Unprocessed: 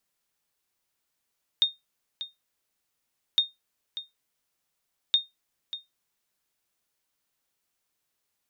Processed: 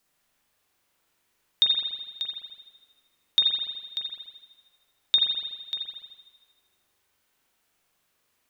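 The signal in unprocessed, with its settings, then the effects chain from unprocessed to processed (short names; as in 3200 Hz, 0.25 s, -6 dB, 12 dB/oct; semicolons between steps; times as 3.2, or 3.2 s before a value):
sonar ping 3680 Hz, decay 0.18 s, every 1.76 s, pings 3, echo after 0.59 s, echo -13.5 dB -13 dBFS
notches 60/120 Hz; in parallel at -0.5 dB: limiter -22 dBFS; on the sum: spring tank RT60 1.3 s, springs 41 ms, chirp 55 ms, DRR -3 dB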